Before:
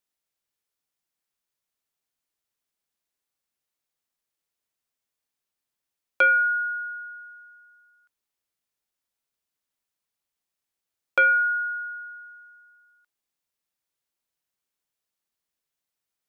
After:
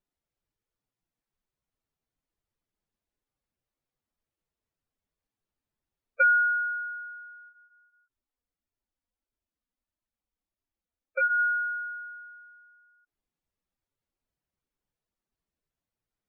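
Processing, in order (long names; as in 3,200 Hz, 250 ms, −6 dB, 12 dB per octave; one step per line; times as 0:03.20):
0:07.49–0:11.39: flanger 1.6 Hz, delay 2.9 ms, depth 1.4 ms, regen −41%
gate on every frequency bin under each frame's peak −10 dB strong
spectral tilt −3.5 dB per octave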